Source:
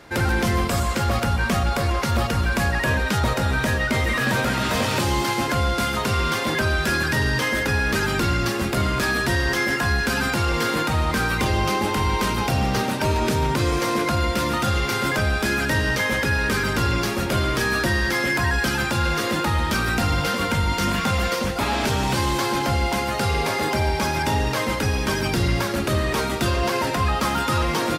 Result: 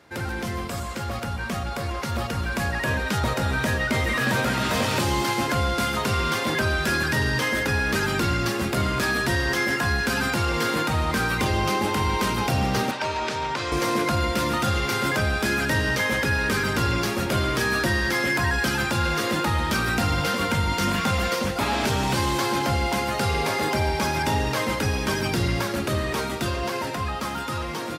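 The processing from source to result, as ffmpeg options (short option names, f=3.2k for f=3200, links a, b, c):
-filter_complex "[0:a]asettb=1/sr,asplit=3[a][b][c];[a]atrim=end=12.914[d];[b]atrim=start=12.91:end=13.72,asetpts=PTS-STARTPTS,afade=t=in:d=0.004:c=qsin,afade=t=out:st=0.806:d=0.004:c=qsin,acrossover=split=520 7000:gain=0.224 1 0.0891[e][f][g];[e][f][g]amix=inputs=3:normalize=0[h];[c]atrim=start=13.716[i];[d][h]acrossfade=d=0.004:c1=hsin:c2=qsin[j];[j][i]acrossfade=d=0.004:c1=qsin:c2=hsin,highpass=61,dynaudnorm=f=580:g=9:m=8dB,volume=-8dB"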